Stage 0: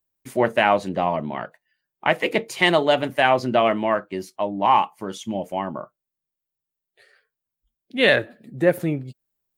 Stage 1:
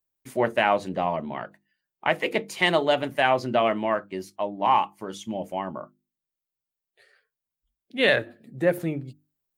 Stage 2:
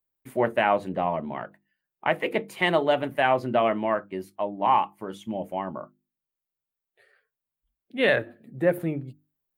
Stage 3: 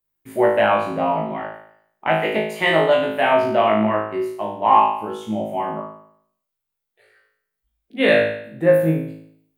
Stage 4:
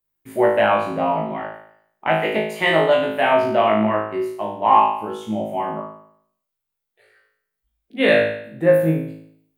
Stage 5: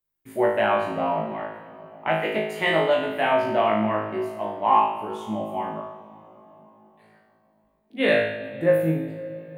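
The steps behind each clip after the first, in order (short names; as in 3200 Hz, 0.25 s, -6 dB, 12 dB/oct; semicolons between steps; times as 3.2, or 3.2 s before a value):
notches 50/100/150/200/250/300/350 Hz; gain -3.5 dB
bell 5700 Hz -12.5 dB 1.3 oct
flutter echo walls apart 3.2 m, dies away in 0.66 s; gain +1.5 dB
nothing audible
reverb RT60 3.9 s, pre-delay 52 ms, DRR 12.5 dB; gain -4.5 dB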